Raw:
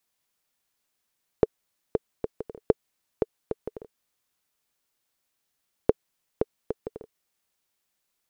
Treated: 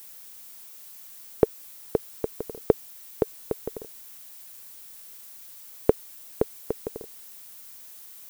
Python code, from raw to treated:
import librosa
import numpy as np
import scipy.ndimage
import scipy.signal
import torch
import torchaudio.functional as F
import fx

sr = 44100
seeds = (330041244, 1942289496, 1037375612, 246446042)

p1 = fx.quant_dither(x, sr, seeds[0], bits=8, dither='triangular')
p2 = x + (p1 * 10.0 ** (-8.5 / 20.0))
y = fx.dmg_noise_colour(p2, sr, seeds[1], colour='violet', level_db=-46.0)